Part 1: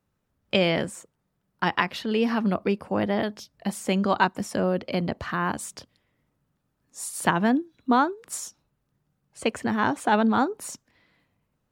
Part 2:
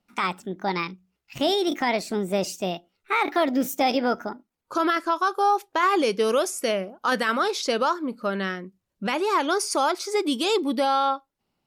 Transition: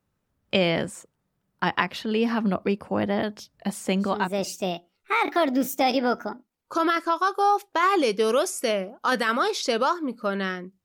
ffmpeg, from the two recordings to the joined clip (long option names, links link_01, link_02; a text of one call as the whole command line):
ffmpeg -i cue0.wav -i cue1.wav -filter_complex "[0:a]apad=whole_dur=10.84,atrim=end=10.84,atrim=end=4.53,asetpts=PTS-STARTPTS[link_01];[1:a]atrim=start=1.95:end=8.84,asetpts=PTS-STARTPTS[link_02];[link_01][link_02]acrossfade=duration=0.58:curve1=tri:curve2=tri" out.wav